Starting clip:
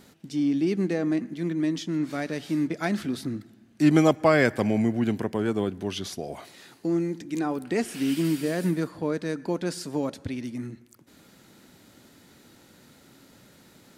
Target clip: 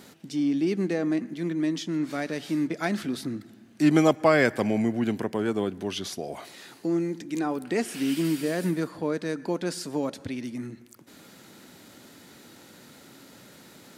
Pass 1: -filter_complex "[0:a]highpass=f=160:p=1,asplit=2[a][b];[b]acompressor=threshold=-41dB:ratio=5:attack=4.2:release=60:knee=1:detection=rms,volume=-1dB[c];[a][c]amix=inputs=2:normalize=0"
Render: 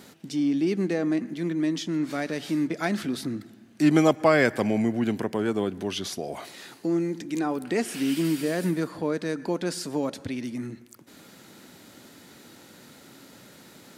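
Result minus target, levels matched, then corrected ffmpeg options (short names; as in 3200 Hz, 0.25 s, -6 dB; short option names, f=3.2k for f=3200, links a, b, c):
compressor: peak gain reduction -9 dB
-filter_complex "[0:a]highpass=f=160:p=1,asplit=2[a][b];[b]acompressor=threshold=-52dB:ratio=5:attack=4.2:release=60:knee=1:detection=rms,volume=-1dB[c];[a][c]amix=inputs=2:normalize=0"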